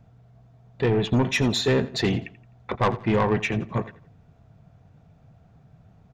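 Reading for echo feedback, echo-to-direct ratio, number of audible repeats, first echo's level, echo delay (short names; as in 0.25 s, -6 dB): 32%, -16.5 dB, 2, -17.0 dB, 85 ms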